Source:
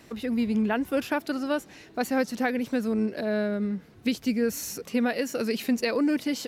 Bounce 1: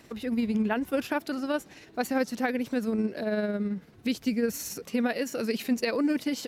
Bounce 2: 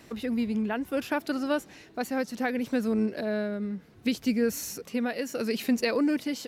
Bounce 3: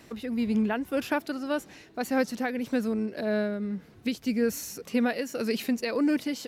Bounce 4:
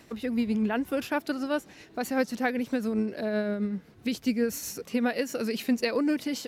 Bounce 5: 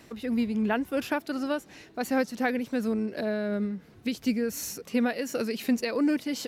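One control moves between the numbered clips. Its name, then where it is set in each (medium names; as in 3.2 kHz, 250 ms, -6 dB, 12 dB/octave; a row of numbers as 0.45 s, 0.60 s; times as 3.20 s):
tremolo, rate: 18 Hz, 0.69 Hz, 1.8 Hz, 7.7 Hz, 2.8 Hz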